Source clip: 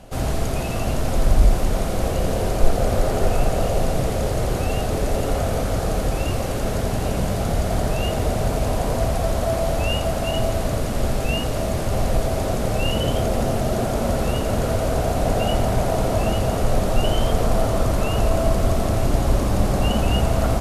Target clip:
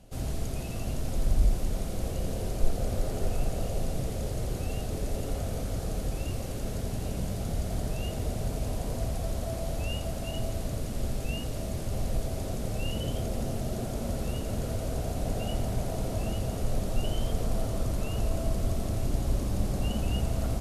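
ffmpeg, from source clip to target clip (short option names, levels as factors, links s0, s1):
-af "equalizer=f=1100:w=0.5:g=-8.5,volume=0.376"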